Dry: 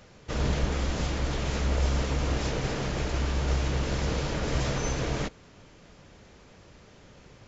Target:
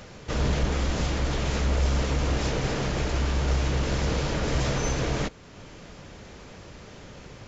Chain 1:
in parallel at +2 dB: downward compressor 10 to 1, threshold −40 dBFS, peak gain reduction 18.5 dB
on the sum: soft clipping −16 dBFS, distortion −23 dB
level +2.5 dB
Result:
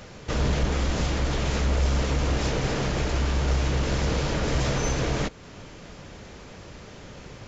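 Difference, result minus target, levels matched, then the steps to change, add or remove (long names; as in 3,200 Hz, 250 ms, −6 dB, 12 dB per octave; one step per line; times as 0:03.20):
downward compressor: peak gain reduction −10 dB
change: downward compressor 10 to 1, threshold −51 dBFS, peak gain reduction 28.5 dB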